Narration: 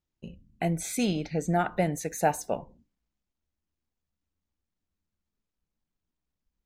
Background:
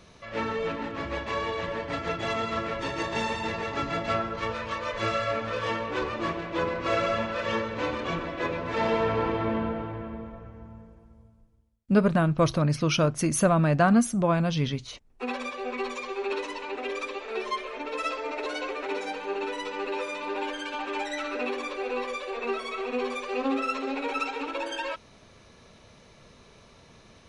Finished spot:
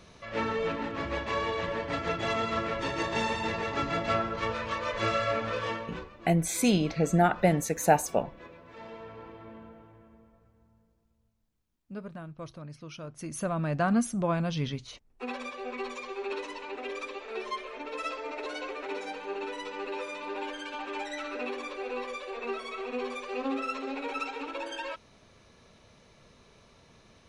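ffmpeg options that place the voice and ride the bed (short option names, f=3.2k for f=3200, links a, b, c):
-filter_complex "[0:a]adelay=5650,volume=3dB[a];[1:a]volume=14.5dB,afade=t=out:st=5.48:d=0.61:silence=0.112202,afade=t=in:st=13.02:d=1.02:silence=0.177828[b];[a][b]amix=inputs=2:normalize=0"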